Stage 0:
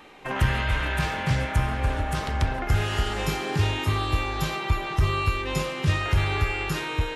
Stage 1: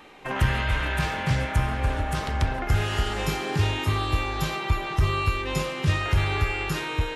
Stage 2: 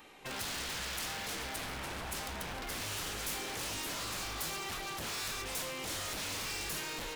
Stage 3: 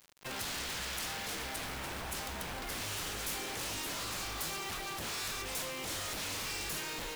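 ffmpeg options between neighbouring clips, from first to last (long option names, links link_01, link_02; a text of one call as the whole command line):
ffmpeg -i in.wav -af anull out.wav
ffmpeg -i in.wav -af "aeval=exprs='0.0376*(abs(mod(val(0)/0.0376+3,4)-2)-1)':channel_layout=same,crystalizer=i=2:c=0,volume=-8.5dB" out.wav
ffmpeg -i in.wav -af "acrusher=bits=7:mix=0:aa=0.000001" out.wav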